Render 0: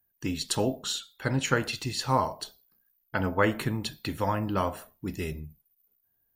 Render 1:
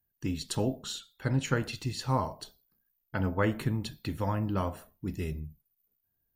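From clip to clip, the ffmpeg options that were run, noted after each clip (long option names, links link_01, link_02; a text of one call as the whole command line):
ffmpeg -i in.wav -af "lowshelf=frequency=280:gain=9,volume=-6.5dB" out.wav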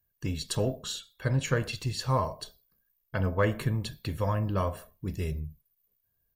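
ffmpeg -i in.wav -filter_complex "[0:a]aecho=1:1:1.8:0.44,asplit=2[link_01][link_02];[link_02]asoftclip=type=tanh:threshold=-29dB,volume=-12dB[link_03];[link_01][link_03]amix=inputs=2:normalize=0" out.wav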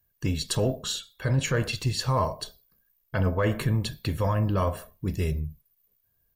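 ffmpeg -i in.wav -af "alimiter=limit=-20.5dB:level=0:latency=1:release=11,volume=5dB" out.wav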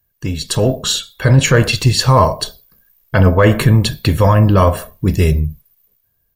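ffmpeg -i in.wav -af "dynaudnorm=framelen=100:gausssize=13:maxgain=9dB,volume=5.5dB" out.wav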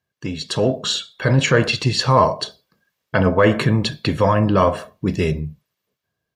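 ffmpeg -i in.wav -af "highpass=150,lowpass=5400,volume=-2.5dB" out.wav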